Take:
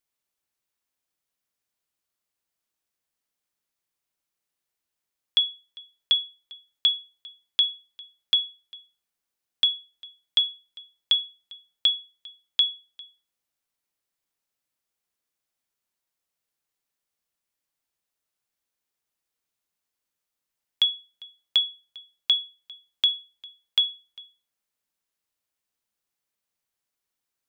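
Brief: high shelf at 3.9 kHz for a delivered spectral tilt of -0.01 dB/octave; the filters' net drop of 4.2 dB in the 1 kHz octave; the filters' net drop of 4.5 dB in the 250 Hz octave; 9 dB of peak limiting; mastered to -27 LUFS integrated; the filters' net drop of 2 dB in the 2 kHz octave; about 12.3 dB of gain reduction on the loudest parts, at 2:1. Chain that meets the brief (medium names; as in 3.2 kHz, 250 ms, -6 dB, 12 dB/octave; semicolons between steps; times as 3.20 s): peaking EQ 250 Hz -6 dB; peaking EQ 1 kHz -4.5 dB; peaking EQ 2 kHz -3.5 dB; treble shelf 3.9 kHz +5 dB; compression 2:1, threshold -39 dBFS; trim +13.5 dB; peak limiter -10 dBFS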